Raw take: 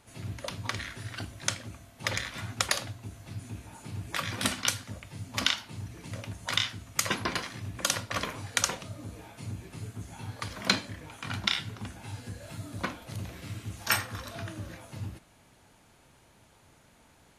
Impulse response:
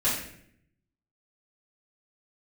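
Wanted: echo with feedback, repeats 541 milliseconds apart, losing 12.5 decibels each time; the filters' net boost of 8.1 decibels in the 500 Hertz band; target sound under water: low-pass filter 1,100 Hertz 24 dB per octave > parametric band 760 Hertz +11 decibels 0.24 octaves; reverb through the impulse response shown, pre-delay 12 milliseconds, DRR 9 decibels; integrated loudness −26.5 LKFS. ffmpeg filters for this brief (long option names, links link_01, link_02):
-filter_complex "[0:a]equalizer=frequency=500:width_type=o:gain=8.5,aecho=1:1:541|1082|1623:0.237|0.0569|0.0137,asplit=2[link_01][link_02];[1:a]atrim=start_sample=2205,adelay=12[link_03];[link_02][link_03]afir=irnorm=-1:irlink=0,volume=-20dB[link_04];[link_01][link_04]amix=inputs=2:normalize=0,lowpass=frequency=1100:width=0.5412,lowpass=frequency=1100:width=1.3066,equalizer=frequency=760:width_type=o:width=0.24:gain=11,volume=9.5dB"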